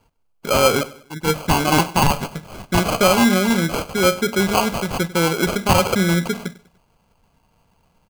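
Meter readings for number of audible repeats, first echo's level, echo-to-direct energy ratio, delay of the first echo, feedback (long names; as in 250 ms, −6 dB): 3, −19.0 dB, −18.0 dB, 98 ms, 41%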